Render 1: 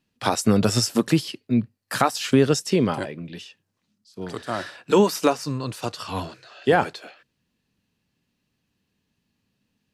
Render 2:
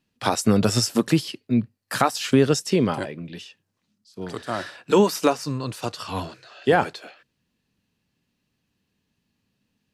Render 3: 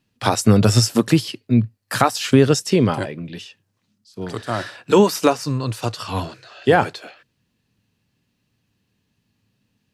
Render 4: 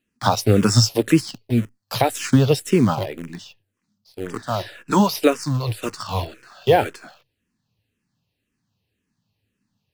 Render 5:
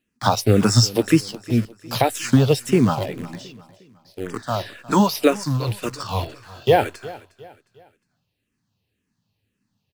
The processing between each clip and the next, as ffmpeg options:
ffmpeg -i in.wav -af anull out.wav
ffmpeg -i in.wav -af "equalizer=frequency=110:width_type=o:width=0.39:gain=8,volume=3.5dB" out.wav
ffmpeg -i in.wav -filter_complex "[0:a]asplit=2[link_01][link_02];[link_02]acrusher=bits=5:dc=4:mix=0:aa=0.000001,volume=-4dB[link_03];[link_01][link_03]amix=inputs=2:normalize=0,asplit=2[link_04][link_05];[link_05]afreqshift=-1.9[link_06];[link_04][link_06]amix=inputs=2:normalize=1,volume=-2.5dB" out.wav
ffmpeg -i in.wav -af "aecho=1:1:358|716|1074:0.112|0.0438|0.0171" out.wav

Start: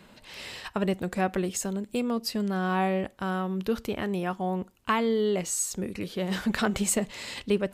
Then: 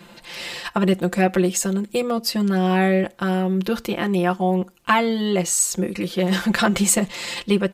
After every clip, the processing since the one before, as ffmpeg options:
ffmpeg -i in.wav -af "lowshelf=frequency=110:gain=-8,aecho=1:1:5.8:1,volume=6dB" out.wav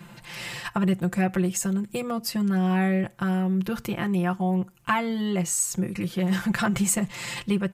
ffmpeg -i in.wav -filter_complex "[0:a]equalizer=frequency=125:width_type=o:width=1:gain=12,equalizer=frequency=250:width_type=o:width=1:gain=-4,equalizer=frequency=500:width_type=o:width=1:gain=-6,equalizer=frequency=4000:width_type=o:width=1:gain=-7,asplit=2[link_01][link_02];[link_02]acompressor=threshold=-28dB:ratio=6,volume=1dB[link_03];[link_01][link_03]amix=inputs=2:normalize=0,volume=-7dB" out.wav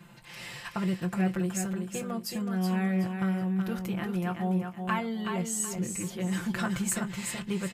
ffmpeg -i in.wav -filter_complex "[0:a]asplit=2[link_01][link_02];[link_02]adelay=22,volume=-13dB[link_03];[link_01][link_03]amix=inputs=2:normalize=0,aecho=1:1:373|746|1119|1492:0.501|0.155|0.0482|0.0149,volume=-7dB" out.wav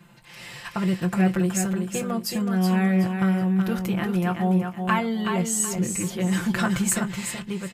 ffmpeg -i in.wav -af "dynaudnorm=framelen=160:gausssize=9:maxgain=7dB" out.wav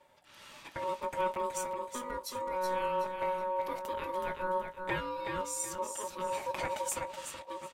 ffmpeg -i in.wav -af "aeval=exprs='val(0)*sin(2*PI*740*n/s)':channel_layout=same,volume=-9dB" out.wav

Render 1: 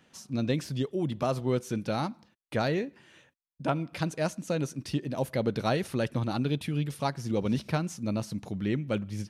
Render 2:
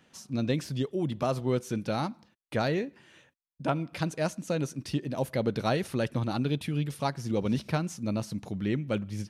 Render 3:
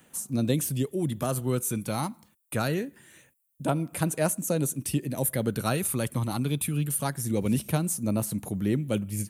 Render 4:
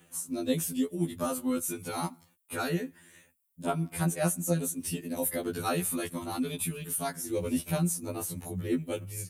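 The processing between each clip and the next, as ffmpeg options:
ffmpeg -i in.wav -af anull out.wav
ffmpeg -i in.wav -filter_complex "[0:a]aphaser=in_gain=1:out_gain=1:delay=1:decay=0.34:speed=0.24:type=triangular,acrossover=split=280|2700[link_01][link_02][link_03];[link_03]aexciter=amount=12.7:drive=2.6:freq=7500[link_04];[link_01][link_02][link_04]amix=inputs=3:normalize=0" out.wav
ffmpeg -i in.wav -af "afftfilt=real='re*2*eq(mod(b,4),0)':imag='im*2*eq(mod(b,4),0)':win_size=2048:overlap=0.75" out.wav

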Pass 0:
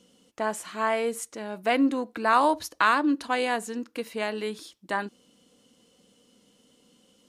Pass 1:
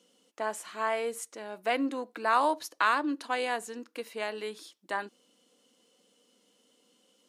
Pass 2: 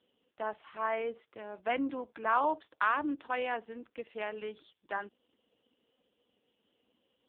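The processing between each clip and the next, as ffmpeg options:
ffmpeg -i in.wav -af "highpass=310,volume=-4dB" out.wav
ffmpeg -i in.wav -af "volume=-2.5dB" -ar 8000 -c:a libopencore_amrnb -b:a 5150 out.amr

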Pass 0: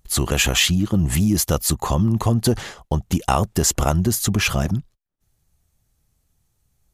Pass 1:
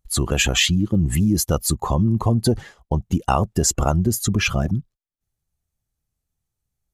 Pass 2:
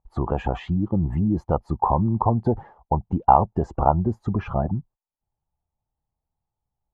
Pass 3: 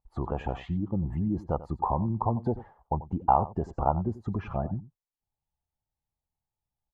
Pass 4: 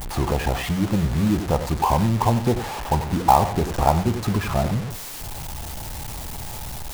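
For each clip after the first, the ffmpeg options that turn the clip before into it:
ffmpeg -i in.wav -af "afftdn=noise_reduction=13:noise_floor=-27" out.wav
ffmpeg -i in.wav -af "lowpass=frequency=880:width_type=q:width=4.9,volume=-4dB" out.wav
ffmpeg -i in.wav -af "aecho=1:1:90:0.15,volume=-7dB" out.wav
ffmpeg -i in.wav -af "aeval=exprs='val(0)+0.5*0.0282*sgn(val(0))':channel_layout=same,acrusher=bits=4:mode=log:mix=0:aa=0.000001,bandreject=frequency=90.15:width_type=h:width=4,bandreject=frequency=180.3:width_type=h:width=4,bandreject=frequency=270.45:width_type=h:width=4,bandreject=frequency=360.6:width_type=h:width=4,bandreject=frequency=450.75:width_type=h:width=4,bandreject=frequency=540.9:width_type=h:width=4,bandreject=frequency=631.05:width_type=h:width=4,bandreject=frequency=721.2:width_type=h:width=4,bandreject=frequency=811.35:width_type=h:width=4,bandreject=frequency=901.5:width_type=h:width=4,bandreject=frequency=991.65:width_type=h:width=4,bandreject=frequency=1081.8:width_type=h:width=4,bandreject=frequency=1171.95:width_type=h:width=4,bandreject=frequency=1262.1:width_type=h:width=4,bandreject=frequency=1352.25:width_type=h:width=4,bandreject=frequency=1442.4:width_type=h:width=4,bandreject=frequency=1532.55:width_type=h:width=4,bandreject=frequency=1622.7:width_type=h:width=4,bandreject=frequency=1712.85:width_type=h:width=4,bandreject=frequency=1803:width_type=h:width=4,bandreject=frequency=1893.15:width_type=h:width=4,bandreject=frequency=1983.3:width_type=h:width=4,bandreject=frequency=2073.45:width_type=h:width=4,bandreject=frequency=2163.6:width_type=h:width=4,bandreject=frequency=2253.75:width_type=h:width=4,bandreject=frequency=2343.9:width_type=h:width=4,bandreject=frequency=2434.05:width_type=h:width=4,bandreject=frequency=2524.2:width_type=h:width=4,bandreject=frequency=2614.35:width_type=h:width=4,bandreject=frequency=2704.5:width_type=h:width=4,bandreject=frequency=2794.65:width_type=h:width=4,bandreject=frequency=2884.8:width_type=h:width=4,bandreject=frequency=2974.95:width_type=h:width=4,bandreject=frequency=3065.1:width_type=h:width=4,bandreject=frequency=3155.25:width_type=h:width=4,bandreject=frequency=3245.4:width_type=h:width=4,volume=6.5dB" out.wav

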